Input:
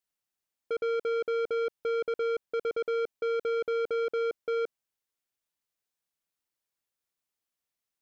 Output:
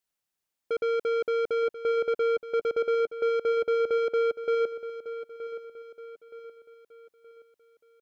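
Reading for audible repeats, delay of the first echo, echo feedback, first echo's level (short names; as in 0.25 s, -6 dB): 4, 0.922 s, 43%, -13.0 dB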